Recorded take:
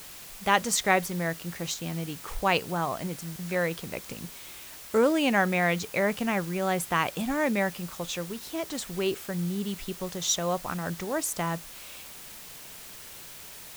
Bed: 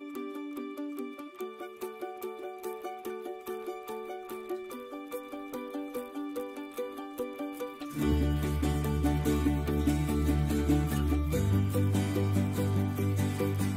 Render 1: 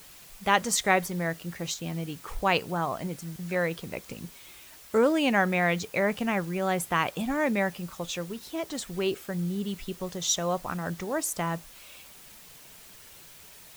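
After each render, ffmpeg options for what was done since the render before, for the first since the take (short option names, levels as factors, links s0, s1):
-af "afftdn=nr=6:nf=-45"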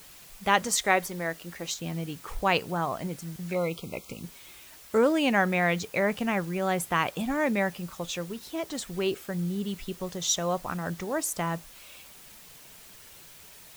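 -filter_complex "[0:a]asettb=1/sr,asplit=3[s0][s1][s2];[s0]atrim=end=0.674[s3];[s1]atrim=start=0.67:end=1.72,asetpts=PTS-STARTPTS,afade=t=in:d=0.004:c=qsin,afade=t=out:st=1.046:d=0.004:c=qsin,equalizer=f=120:w=1.5:g=-14[s4];[s2]atrim=start=1.716[s5];[s3][s4]acrossfade=d=0.004:c1=hsin:c2=qsin[s6];[s6][s5]acrossfade=d=0.004:c1=qsin:c2=hsin,asplit=3[s7][s8][s9];[s7]afade=t=out:st=3.53:d=0.02[s10];[s8]asuperstop=centerf=1700:order=20:qfactor=2.6,afade=t=in:st=3.53:d=0.02,afade=t=out:st=4.22:d=0.02[s11];[s9]afade=t=in:st=4.22:d=0.02[s12];[s10][s11][s12]amix=inputs=3:normalize=0"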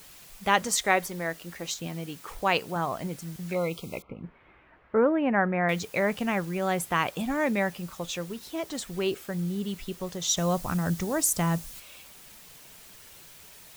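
-filter_complex "[0:a]asettb=1/sr,asplit=3[s0][s1][s2];[s0]atrim=end=1.874[s3];[s1]atrim=start=1.87:end=2.76,asetpts=PTS-STARTPTS,afade=t=in:d=0.004:c=qsin,afade=t=out:st=0.886:d=0.004:c=qsin,lowshelf=f=120:g=-9.5[s4];[s2]atrim=start=2.756[s5];[s3][s4]acrossfade=d=0.004:c1=hsin:c2=qsin[s6];[s6][s5]acrossfade=d=0.004:c1=qsin:c2=hsin,asettb=1/sr,asplit=3[s7][s8][s9];[s7]atrim=end=4.024[s10];[s8]atrim=start=4.02:end=5.69,asetpts=PTS-STARTPTS,afade=t=in:d=0.004:c=qsin,afade=t=out:st=1.666:d=0.004:c=qsin,lowpass=f=1900:w=0.5412,lowpass=f=1900:w=1.3066[s11];[s9]atrim=start=5.686[s12];[s10][s11]acrossfade=d=0.004:c1=hsin:c2=qsin[s13];[s13][s12]acrossfade=d=0.004:c1=qsin:c2=hsin,asettb=1/sr,asplit=3[s14][s15][s16];[s14]atrim=end=10.374[s17];[s15]atrim=start=10.37:end=11.8,asetpts=PTS-STARTPTS,afade=t=in:d=0.004:c=qsin,afade=t=out:st=1.426:d=0.004:c=qsin,bass=f=250:g=9,treble=f=4000:g=7[s18];[s16]atrim=start=11.796[s19];[s17][s18]acrossfade=d=0.004:c1=hsin:c2=qsin[s20];[s20][s19]acrossfade=d=0.004:c1=qsin:c2=hsin"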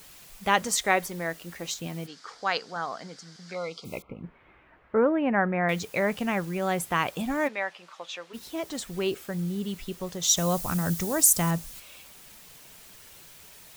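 -filter_complex "[0:a]asplit=3[s0][s1][s2];[s0]afade=t=out:st=2.06:d=0.02[s3];[s1]highpass=320,equalizer=f=350:t=q:w=4:g=-9,equalizer=f=590:t=q:w=4:g=-6,equalizer=f=950:t=q:w=4:g=-5,equalizer=f=1500:t=q:w=4:g=4,equalizer=f=2600:t=q:w=4:g=-9,equalizer=f=4800:t=q:w=4:g=9,lowpass=f=6700:w=0.5412,lowpass=f=6700:w=1.3066,afade=t=in:st=2.06:d=0.02,afade=t=out:st=3.84:d=0.02[s4];[s2]afade=t=in:st=3.84:d=0.02[s5];[s3][s4][s5]amix=inputs=3:normalize=0,asplit=3[s6][s7][s8];[s6]afade=t=out:st=7.47:d=0.02[s9];[s7]highpass=680,lowpass=4000,afade=t=in:st=7.47:d=0.02,afade=t=out:st=8.33:d=0.02[s10];[s8]afade=t=in:st=8.33:d=0.02[s11];[s9][s10][s11]amix=inputs=3:normalize=0,asettb=1/sr,asplit=3[s12][s13][s14];[s12]atrim=end=10.234[s15];[s13]atrim=start=10.23:end=11.51,asetpts=PTS-STARTPTS,afade=t=in:d=0.004:c=qsin,afade=t=out:st=1.276:d=0.004:c=qsin,highshelf=f=5900:g=9[s16];[s14]atrim=start=11.506[s17];[s15][s16]acrossfade=d=0.004:c1=hsin:c2=qsin[s18];[s18][s17]acrossfade=d=0.004:c1=qsin:c2=hsin"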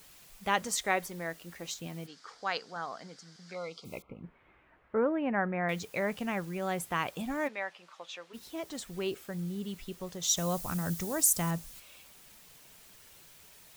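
-af "volume=0.501"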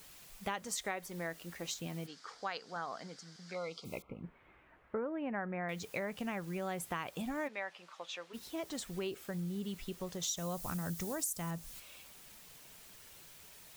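-af "acompressor=threshold=0.0178:ratio=6"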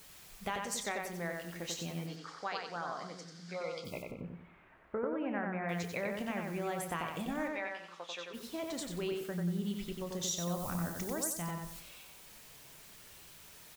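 -filter_complex "[0:a]asplit=2[s0][s1];[s1]adelay=29,volume=0.251[s2];[s0][s2]amix=inputs=2:normalize=0,asplit=2[s3][s4];[s4]adelay=92,lowpass=f=4800:p=1,volume=0.708,asplit=2[s5][s6];[s6]adelay=92,lowpass=f=4800:p=1,volume=0.37,asplit=2[s7][s8];[s8]adelay=92,lowpass=f=4800:p=1,volume=0.37,asplit=2[s9][s10];[s10]adelay=92,lowpass=f=4800:p=1,volume=0.37,asplit=2[s11][s12];[s12]adelay=92,lowpass=f=4800:p=1,volume=0.37[s13];[s3][s5][s7][s9][s11][s13]amix=inputs=6:normalize=0"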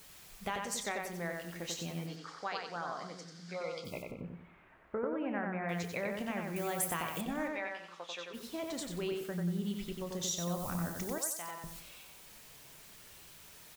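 -filter_complex "[0:a]asettb=1/sr,asplit=3[s0][s1][s2];[s0]atrim=end=6.564[s3];[s1]atrim=start=6.56:end=7.21,asetpts=PTS-STARTPTS,afade=t=in:d=0.004:c=qsin,afade=t=out:st=0.646:d=0.004:c=qsin,aemphasis=mode=production:type=50kf[s4];[s2]atrim=start=7.206[s5];[s3][s4]acrossfade=d=0.004:c1=hsin:c2=qsin[s6];[s6][s5]acrossfade=d=0.004:c1=qsin:c2=hsin,asettb=1/sr,asplit=3[s7][s8][s9];[s7]atrim=end=11.184[s10];[s8]atrim=start=11.18:end=11.64,asetpts=PTS-STARTPTS,afade=t=in:d=0.004:c=qsin,afade=t=out:st=0.456:d=0.004:c=qsin,highpass=530[s11];[s9]atrim=start=11.636[s12];[s10][s11]acrossfade=d=0.004:c1=hsin:c2=qsin[s13];[s13][s12]acrossfade=d=0.004:c1=qsin:c2=hsin"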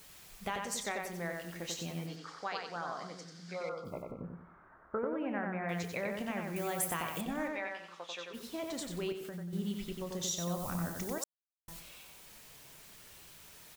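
-filter_complex "[0:a]asettb=1/sr,asplit=3[s0][s1][s2];[s0]atrim=end=3.694[s3];[s1]atrim=start=3.69:end=4.99,asetpts=PTS-STARTPTS,afade=t=in:d=0.004:c=qsin,afade=t=out:st=1.296:d=0.004:c=qsin,highshelf=f=1900:t=q:w=3:g=-11[s4];[s2]atrim=start=4.986[s5];[s3][s4]acrossfade=d=0.004:c1=hsin:c2=qsin[s6];[s6][s5]acrossfade=d=0.004:c1=qsin:c2=hsin,asettb=1/sr,asplit=3[s7][s8][s9];[s7]atrim=end=9.124[s10];[s8]atrim=start=9.12:end=9.53,asetpts=PTS-STARTPTS,afade=t=in:d=0.004:c=qsin,afade=t=out:st=0.406:d=0.004:c=qsin,acompressor=threshold=0.0112:ratio=6:attack=3.2:release=140:knee=1:detection=peak[s11];[s9]atrim=start=9.526[s12];[s10][s11]acrossfade=d=0.004:c1=hsin:c2=qsin[s13];[s13][s12]acrossfade=d=0.004:c1=qsin:c2=hsin,asplit=3[s14][s15][s16];[s14]atrim=end=11.24,asetpts=PTS-STARTPTS,afade=t=out:st=11.236:d=0.004:c=hsin[s17];[s15]atrim=start=11.24:end=11.68,asetpts=PTS-STARTPTS,volume=0[s18];[s16]atrim=start=11.68,asetpts=PTS-STARTPTS,afade=t=in:d=0.004:c=hsin[s19];[s17][s18][s19]concat=n=3:v=0:a=1"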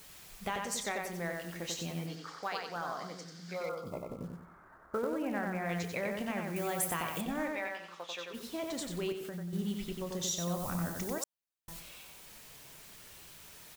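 -filter_complex "[0:a]asplit=2[s0][s1];[s1]asoftclip=type=tanh:threshold=0.015,volume=0.251[s2];[s0][s2]amix=inputs=2:normalize=0,acrusher=bits=6:mode=log:mix=0:aa=0.000001"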